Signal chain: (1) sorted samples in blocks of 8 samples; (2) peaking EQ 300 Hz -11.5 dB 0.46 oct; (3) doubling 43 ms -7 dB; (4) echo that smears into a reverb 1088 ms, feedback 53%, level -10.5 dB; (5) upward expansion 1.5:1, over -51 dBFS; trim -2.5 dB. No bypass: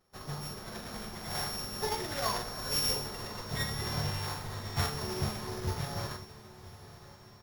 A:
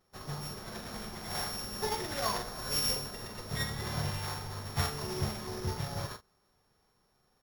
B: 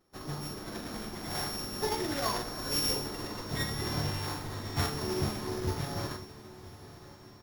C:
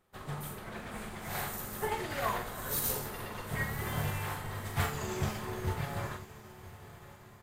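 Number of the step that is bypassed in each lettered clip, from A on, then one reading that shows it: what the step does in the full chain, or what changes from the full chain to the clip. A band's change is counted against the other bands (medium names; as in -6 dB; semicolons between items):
4, momentary loudness spread change -9 LU; 2, 250 Hz band +4.0 dB; 1, distortion -5 dB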